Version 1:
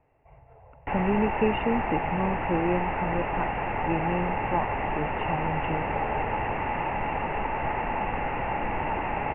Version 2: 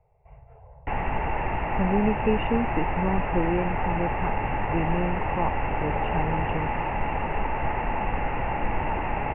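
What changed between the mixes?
speech: entry +0.85 s
master: add low-shelf EQ 100 Hz +8.5 dB

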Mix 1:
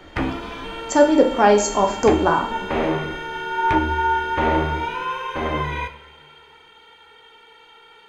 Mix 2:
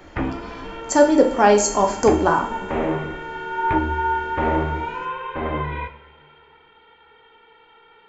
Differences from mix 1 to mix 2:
background: add high-frequency loss of the air 450 metres
master: add high-shelf EQ 5,400 Hz +5 dB

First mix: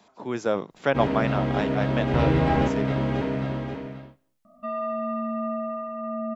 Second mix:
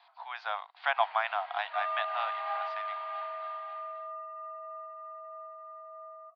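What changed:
first sound −10.5 dB
second sound: entry −2.90 s
master: add Chebyshev band-pass filter 710–4,600 Hz, order 5

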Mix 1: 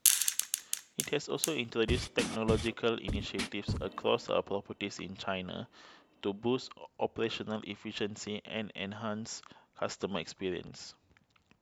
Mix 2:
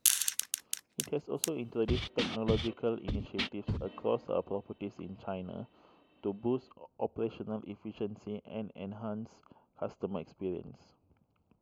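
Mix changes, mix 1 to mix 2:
speech: add moving average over 24 samples
second sound: add low-pass with resonance 3,500 Hz, resonance Q 2.1
reverb: off

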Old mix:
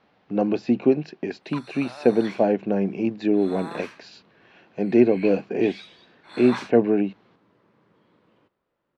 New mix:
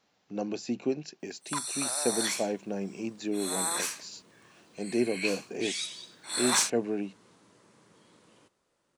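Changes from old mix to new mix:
speech −12.0 dB
master: remove high-frequency loss of the air 360 metres

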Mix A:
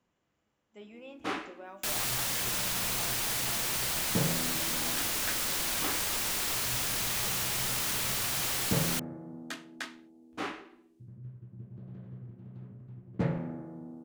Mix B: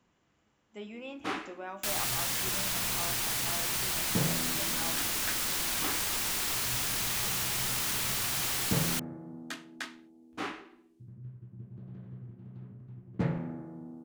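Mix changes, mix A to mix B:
speech +7.0 dB
master: add parametric band 550 Hz −3.5 dB 0.55 octaves

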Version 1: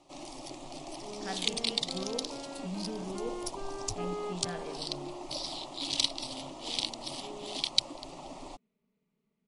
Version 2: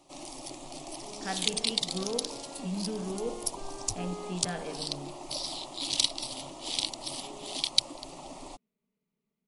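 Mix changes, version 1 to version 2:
speech +4.0 dB
second sound −5.0 dB
master: remove high-frequency loss of the air 56 metres

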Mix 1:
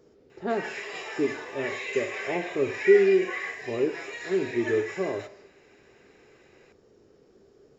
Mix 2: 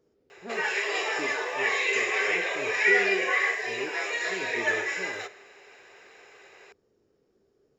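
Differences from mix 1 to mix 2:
speech −11.0 dB
background +8.5 dB

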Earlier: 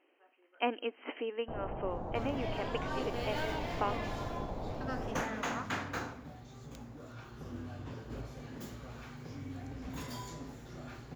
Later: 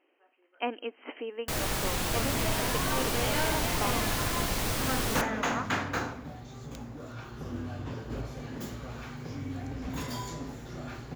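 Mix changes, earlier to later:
first sound: remove transistor ladder low-pass 910 Hz, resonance 40%
second sound +6.5 dB

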